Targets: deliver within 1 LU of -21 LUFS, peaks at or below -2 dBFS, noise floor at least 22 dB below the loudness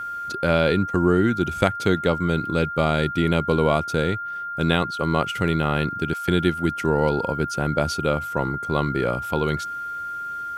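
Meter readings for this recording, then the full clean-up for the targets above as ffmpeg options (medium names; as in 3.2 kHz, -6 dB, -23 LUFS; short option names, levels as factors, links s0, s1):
steady tone 1.4 kHz; tone level -28 dBFS; loudness -23.0 LUFS; peak level -2.5 dBFS; loudness target -21.0 LUFS
-> -af "bandreject=f=1400:w=30"
-af "volume=1.26,alimiter=limit=0.794:level=0:latency=1"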